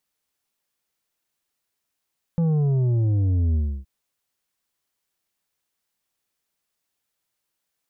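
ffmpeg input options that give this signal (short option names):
-f lavfi -i "aevalsrc='0.119*clip((1.47-t)/0.3,0,1)*tanh(2.24*sin(2*PI*170*1.47/log(65/170)*(exp(log(65/170)*t/1.47)-1)))/tanh(2.24)':d=1.47:s=44100"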